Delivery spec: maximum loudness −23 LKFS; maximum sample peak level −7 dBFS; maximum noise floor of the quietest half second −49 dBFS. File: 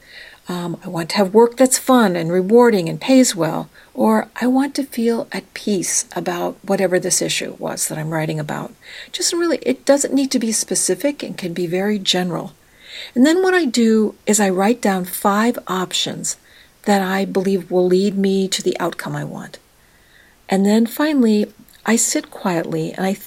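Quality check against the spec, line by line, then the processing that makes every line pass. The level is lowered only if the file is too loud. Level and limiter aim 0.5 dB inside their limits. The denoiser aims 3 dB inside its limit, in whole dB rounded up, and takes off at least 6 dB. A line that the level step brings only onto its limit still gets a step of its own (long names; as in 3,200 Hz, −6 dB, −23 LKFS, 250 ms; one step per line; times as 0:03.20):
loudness −17.5 LKFS: out of spec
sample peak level −2.0 dBFS: out of spec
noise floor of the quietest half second −52 dBFS: in spec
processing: level −6 dB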